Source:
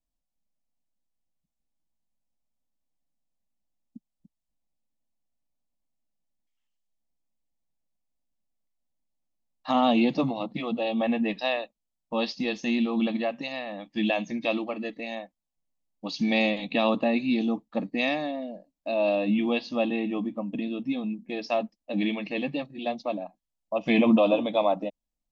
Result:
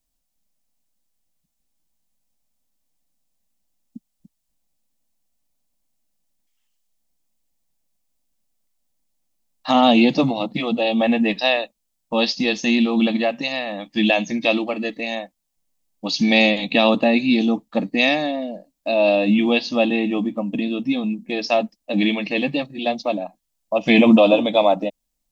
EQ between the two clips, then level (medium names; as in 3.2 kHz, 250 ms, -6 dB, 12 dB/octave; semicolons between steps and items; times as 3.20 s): treble shelf 3.9 kHz +8.5 dB; dynamic bell 1.1 kHz, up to -5 dB, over -49 dBFS, Q 6.6; +7.5 dB